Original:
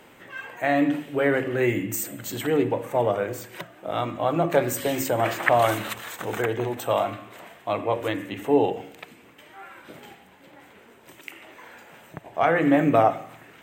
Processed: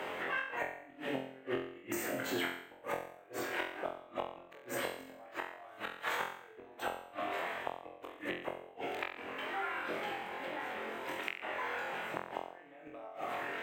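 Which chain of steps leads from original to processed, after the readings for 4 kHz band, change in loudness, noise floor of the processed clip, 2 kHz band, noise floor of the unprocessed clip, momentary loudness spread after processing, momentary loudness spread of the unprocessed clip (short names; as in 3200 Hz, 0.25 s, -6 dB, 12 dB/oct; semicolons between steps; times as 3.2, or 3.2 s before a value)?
-7.5 dB, -15.5 dB, -56 dBFS, -8.0 dB, -52 dBFS, 9 LU, 20 LU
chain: tone controls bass -15 dB, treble -14 dB; compressor 8:1, threshold -29 dBFS, peak gain reduction 14.5 dB; flipped gate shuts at -26 dBFS, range -35 dB; on a send: flutter echo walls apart 3.9 m, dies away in 0.51 s; on the sum: three-band squash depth 70%; gain +4 dB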